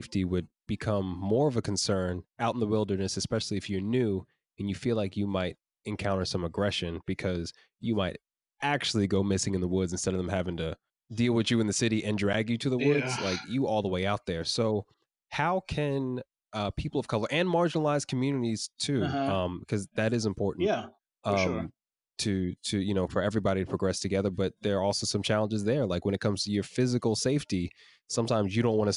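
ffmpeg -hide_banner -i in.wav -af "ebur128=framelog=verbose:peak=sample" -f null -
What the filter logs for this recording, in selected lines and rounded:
Integrated loudness:
  I:         -29.7 LUFS
  Threshold: -39.8 LUFS
Loudness range:
  LRA:         3.1 LU
  Threshold: -49.9 LUFS
  LRA low:   -31.6 LUFS
  LRA high:  -28.5 LUFS
Sample peak:
  Peak:      -12.8 dBFS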